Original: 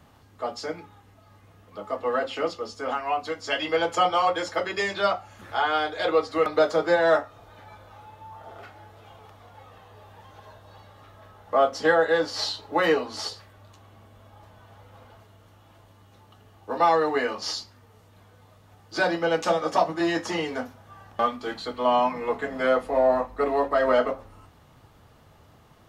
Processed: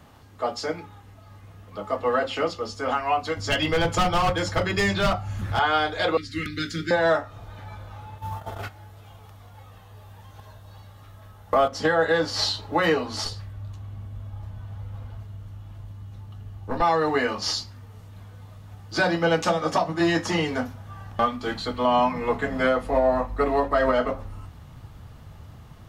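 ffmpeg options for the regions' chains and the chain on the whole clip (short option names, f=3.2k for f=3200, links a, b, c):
-filter_complex "[0:a]asettb=1/sr,asplit=3[a][b][c];[a]atrim=end=3.374[d];[b]atrim=start=3.37:end=5.59,asetpts=PTS-STARTPTS,afade=t=in:d=0.004:c=qsin,afade=t=out:st=2.216:d=0.004:c=qsin,acompressor=mode=upward:threshold=-41dB:ratio=2.5:attack=3.2:release=140:knee=2.83:detection=peak,asoftclip=type=hard:threshold=-21.5dB,bass=f=250:g=9,treble=f=4k:g=1[e];[c]atrim=start=5.586[f];[d][e]acrossfade=d=0.004:c1=hsin:c2=qsin[g];[g][f]acrossfade=d=0.004:c1=qsin:c2=hsin,asettb=1/sr,asplit=3[h][i][j];[h]atrim=end=6.174[k];[i]atrim=start=6.17:end=6.91,asetpts=PTS-STARTPTS,afade=t=in:d=0.004:c=qsin,afade=t=out:st=0.736:d=0.004:c=qsin,asuperstop=centerf=800:order=8:qfactor=0.66,equalizer=f=460:w=2.9:g=-14[l];[j]atrim=start=6.906[m];[k][l]acrossfade=d=0.004:c1=hsin:c2=qsin[n];[n][m]acrossfade=d=0.004:c1=qsin:c2=hsin,asettb=1/sr,asplit=3[o][p][q];[o]atrim=end=8.184[r];[p]atrim=start=8.18:end=11.68,asetpts=PTS-STARTPTS,afade=t=in:d=0.004:c=qsin,afade=t=out:st=3.496:d=0.004:c=qsin,highshelf=f=6.5k:g=11,acontrast=55,agate=range=-12dB:threshold=-38dB:ratio=16:release=100:detection=peak[s];[q]atrim=start=11.676[t];[r][s]acrossfade=d=0.004:c1=hsin:c2=qsin[u];[u][t]acrossfade=d=0.004:c1=qsin:c2=hsin,asettb=1/sr,asplit=3[v][w][x];[v]atrim=end=13.244[y];[w]atrim=start=13.24:end=16.82,asetpts=PTS-STARTPTS,afade=t=in:d=0.004:c=qsin,afade=t=out:st=3.576:d=0.004:c=qsin,lowshelf=f=160:g=11,aeval=exprs='(tanh(6.31*val(0)+0.7)-tanh(0.7))/6.31':c=same[z];[x]atrim=start=16.816[aa];[y][z]acrossfade=d=0.004:c1=hsin:c2=qsin[ab];[ab][aa]acrossfade=d=0.004:c1=qsin:c2=hsin,asubboost=boost=3:cutoff=200,alimiter=limit=-15.5dB:level=0:latency=1:release=211,volume=4dB"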